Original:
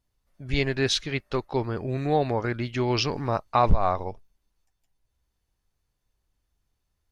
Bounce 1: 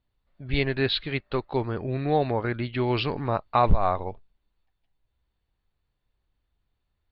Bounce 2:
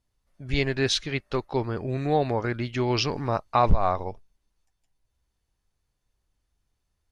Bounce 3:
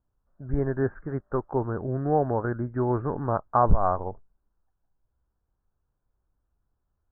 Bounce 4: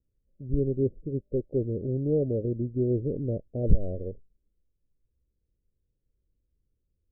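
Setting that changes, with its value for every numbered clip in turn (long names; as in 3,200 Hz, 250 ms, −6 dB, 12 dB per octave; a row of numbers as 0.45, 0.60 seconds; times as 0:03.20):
Butterworth low-pass, frequency: 4,400, 12,000, 1,600, 550 Hertz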